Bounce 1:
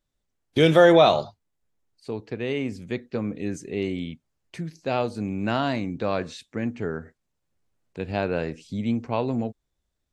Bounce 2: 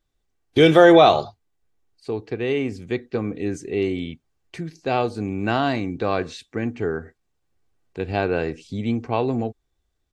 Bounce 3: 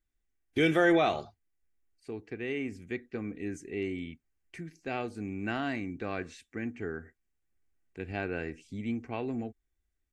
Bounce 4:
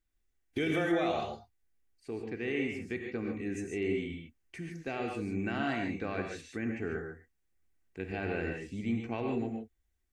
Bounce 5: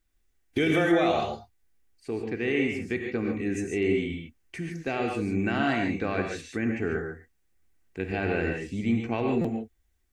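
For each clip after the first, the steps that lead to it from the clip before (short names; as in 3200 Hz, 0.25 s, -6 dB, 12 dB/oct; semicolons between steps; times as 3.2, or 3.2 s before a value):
high shelf 6900 Hz -5.5 dB; comb 2.6 ms, depth 36%; gain +3.5 dB
graphic EQ 125/500/1000/2000/4000 Hz -8/-7/-9/+5/-11 dB; gain -6 dB
limiter -23.5 dBFS, peak gain reduction 10 dB; non-linear reverb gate 0.17 s rising, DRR 2 dB
stuck buffer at 9.41, samples 256, times 5; gain +7 dB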